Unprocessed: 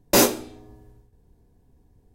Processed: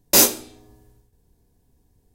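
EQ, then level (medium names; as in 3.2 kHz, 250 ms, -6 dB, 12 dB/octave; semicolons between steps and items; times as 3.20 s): treble shelf 3 kHz +12 dB; -4.0 dB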